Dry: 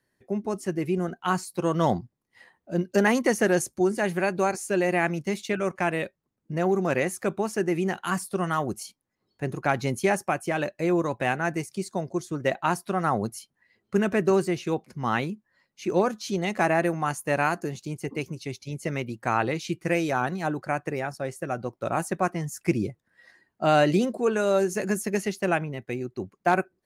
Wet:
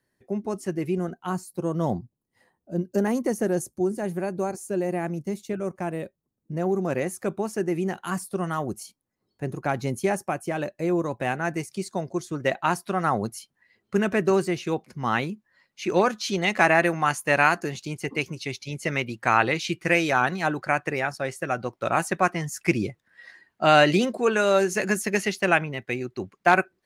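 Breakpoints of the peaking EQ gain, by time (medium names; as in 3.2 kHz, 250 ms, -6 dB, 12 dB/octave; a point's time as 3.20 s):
peaking EQ 2.5 kHz 2.8 oct
0.99 s -1.5 dB
1.39 s -13 dB
5.98 s -13 dB
7.22 s -4.5 dB
11.11 s -4.5 dB
11.75 s +2.5 dB
15.31 s +2.5 dB
15.96 s +8.5 dB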